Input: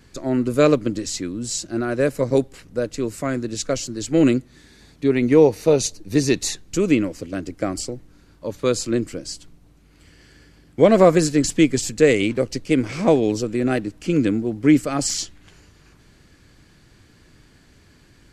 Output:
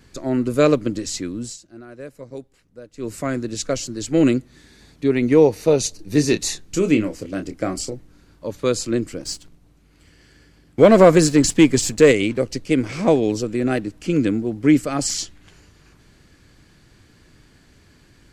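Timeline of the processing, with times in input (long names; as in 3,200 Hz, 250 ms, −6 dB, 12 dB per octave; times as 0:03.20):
0:01.41–0:03.11: duck −16.5 dB, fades 0.16 s
0:05.96–0:07.94: double-tracking delay 27 ms −8 dB
0:09.20–0:12.12: leveller curve on the samples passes 1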